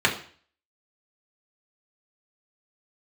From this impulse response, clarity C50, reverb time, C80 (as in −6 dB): 10.5 dB, 0.45 s, 14.5 dB